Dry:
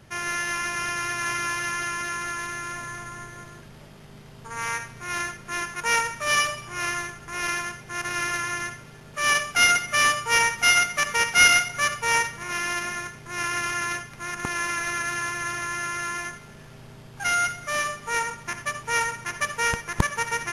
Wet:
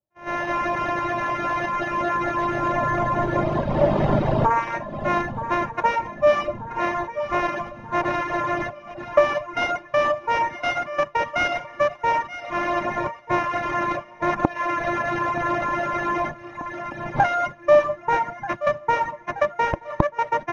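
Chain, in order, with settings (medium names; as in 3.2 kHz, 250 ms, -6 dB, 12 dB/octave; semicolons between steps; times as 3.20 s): recorder AGC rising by 11 dB/s; high-order bell 770 Hz +8 dB 1.2 oct; gate -22 dBFS, range -48 dB; on a send: shuffle delay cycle 1235 ms, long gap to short 3:1, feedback 51%, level -14 dB; on the sum: reverb removal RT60 1.1 s; in parallel at +1 dB: compression, threshold -28 dBFS, peak gain reduction 16 dB; on the sum: tape spacing loss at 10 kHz 36 dB; small resonant body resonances 320/580/3800 Hz, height 10 dB, ringing for 40 ms; trim -1.5 dB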